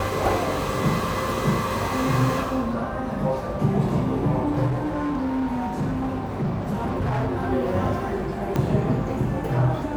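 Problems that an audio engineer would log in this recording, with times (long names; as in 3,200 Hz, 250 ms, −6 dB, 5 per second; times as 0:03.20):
0:04.66–0:07.35: clipping −21 dBFS
0:08.56: click −12 dBFS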